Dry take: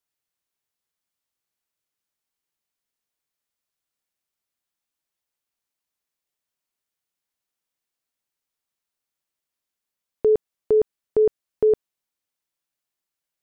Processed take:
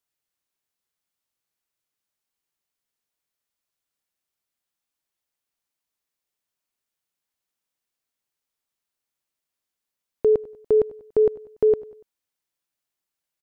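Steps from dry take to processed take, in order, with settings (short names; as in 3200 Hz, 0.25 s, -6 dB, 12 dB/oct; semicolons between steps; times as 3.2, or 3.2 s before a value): feedback echo 96 ms, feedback 46%, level -20 dB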